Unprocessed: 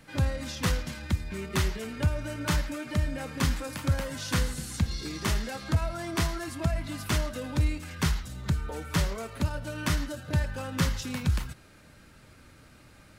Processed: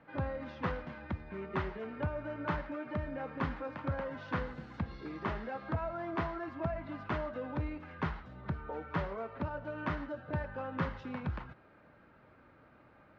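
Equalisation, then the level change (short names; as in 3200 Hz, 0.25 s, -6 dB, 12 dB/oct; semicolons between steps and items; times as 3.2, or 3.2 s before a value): band-pass 970 Hz, Q 0.79; air absorption 230 m; tilt -2 dB/oct; 0.0 dB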